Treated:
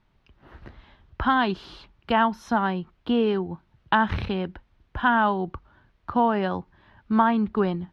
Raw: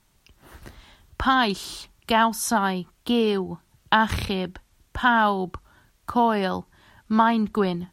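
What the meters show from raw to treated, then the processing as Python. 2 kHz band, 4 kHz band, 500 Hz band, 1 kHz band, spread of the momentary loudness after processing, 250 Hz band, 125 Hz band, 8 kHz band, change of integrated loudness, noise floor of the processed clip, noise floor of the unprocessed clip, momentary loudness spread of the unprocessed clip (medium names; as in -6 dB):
-2.5 dB, -6.5 dB, -1.0 dB, -1.5 dB, 14 LU, -0.5 dB, 0.0 dB, under -20 dB, -1.5 dB, -66 dBFS, -64 dBFS, 15 LU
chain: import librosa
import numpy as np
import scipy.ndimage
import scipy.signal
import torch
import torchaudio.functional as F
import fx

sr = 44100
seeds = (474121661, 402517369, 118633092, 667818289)

y = fx.air_absorb(x, sr, metres=310.0)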